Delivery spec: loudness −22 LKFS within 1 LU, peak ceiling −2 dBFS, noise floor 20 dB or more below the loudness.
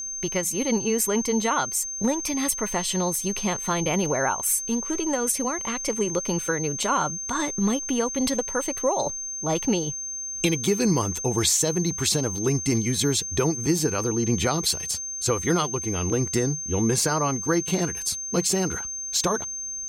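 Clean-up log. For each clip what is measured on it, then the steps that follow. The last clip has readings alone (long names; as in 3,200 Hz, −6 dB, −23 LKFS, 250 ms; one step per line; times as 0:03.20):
interfering tone 6,300 Hz; level of the tone −30 dBFS; integrated loudness −24.0 LKFS; sample peak −9.0 dBFS; target loudness −22.0 LKFS
→ notch filter 6,300 Hz, Q 30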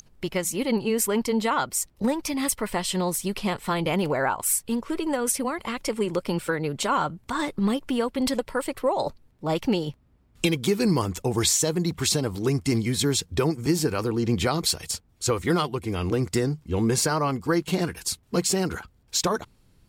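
interfering tone none found; integrated loudness −25.5 LKFS; sample peak −9.5 dBFS; target loudness −22.0 LKFS
→ level +3.5 dB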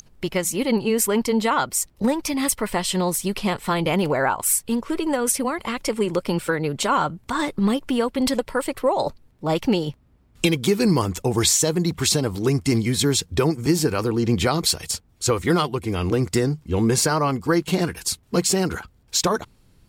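integrated loudness −22.0 LKFS; sample peak −6.0 dBFS; background noise floor −57 dBFS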